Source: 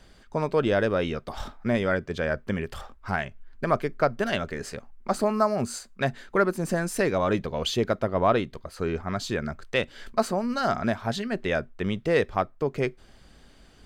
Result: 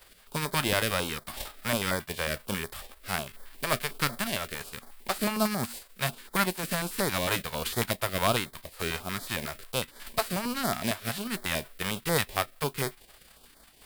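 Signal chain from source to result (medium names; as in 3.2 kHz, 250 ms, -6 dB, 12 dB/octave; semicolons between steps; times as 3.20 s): formants flattened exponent 0.3; peaking EQ 6.3 kHz -8.5 dB 0.54 oct; step-sequenced notch 11 Hz 220–2700 Hz; trim -2.5 dB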